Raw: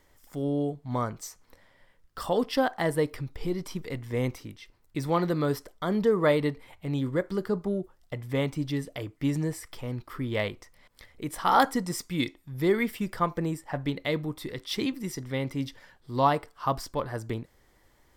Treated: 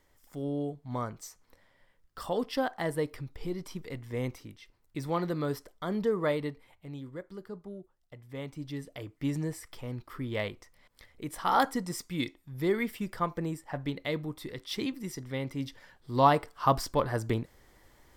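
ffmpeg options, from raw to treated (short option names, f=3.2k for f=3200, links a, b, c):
-af "volume=12dB,afade=t=out:st=6.09:d=0.97:silence=0.354813,afade=t=in:st=8.28:d=1.01:silence=0.316228,afade=t=in:st=15.56:d=1.14:silence=0.446684"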